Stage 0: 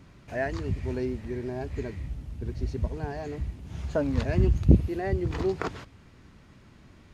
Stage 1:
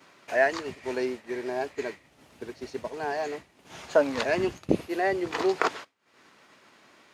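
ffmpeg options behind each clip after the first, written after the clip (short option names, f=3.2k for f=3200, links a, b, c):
-af "highpass=520,acompressor=mode=upward:threshold=-37dB:ratio=2.5,agate=range=-33dB:threshold=-38dB:ratio=3:detection=peak,volume=9dB"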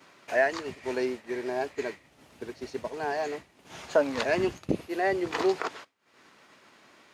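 -af "alimiter=limit=-12dB:level=0:latency=1:release=408"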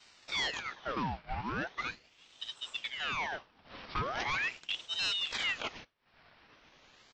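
-af "aresample=16000,asoftclip=type=hard:threshold=-26.5dB,aresample=44100,aresample=11025,aresample=44100,aeval=exprs='val(0)*sin(2*PI*1900*n/s+1900*0.8/0.4*sin(2*PI*0.4*n/s))':c=same,volume=-1dB"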